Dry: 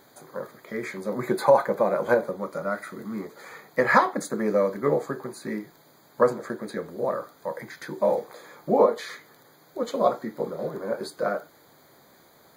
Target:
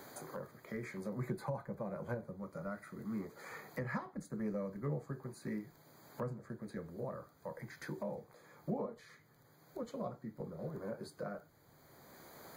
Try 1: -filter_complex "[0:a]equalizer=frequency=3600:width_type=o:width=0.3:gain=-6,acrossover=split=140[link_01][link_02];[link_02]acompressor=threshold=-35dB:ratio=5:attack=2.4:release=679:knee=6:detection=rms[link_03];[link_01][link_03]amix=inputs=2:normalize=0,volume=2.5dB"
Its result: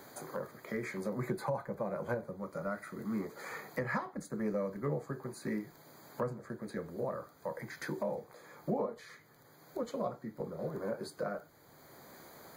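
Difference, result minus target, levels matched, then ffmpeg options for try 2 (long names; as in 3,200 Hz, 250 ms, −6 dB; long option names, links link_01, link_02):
downward compressor: peak gain reduction −6.5 dB
-filter_complex "[0:a]equalizer=frequency=3600:width_type=o:width=0.3:gain=-6,acrossover=split=140[link_01][link_02];[link_02]acompressor=threshold=-43dB:ratio=5:attack=2.4:release=679:knee=6:detection=rms[link_03];[link_01][link_03]amix=inputs=2:normalize=0,volume=2.5dB"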